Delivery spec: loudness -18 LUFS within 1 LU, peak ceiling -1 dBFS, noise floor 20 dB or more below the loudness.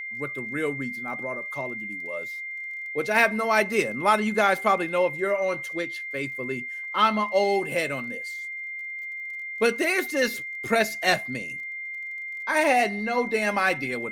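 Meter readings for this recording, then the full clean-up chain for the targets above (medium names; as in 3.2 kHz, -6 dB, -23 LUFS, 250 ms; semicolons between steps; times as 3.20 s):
tick rate 25 per s; steady tone 2.1 kHz; tone level -32 dBFS; loudness -25.5 LUFS; peak level -6.5 dBFS; loudness target -18.0 LUFS
-> de-click; band-stop 2.1 kHz, Q 30; trim +7.5 dB; peak limiter -1 dBFS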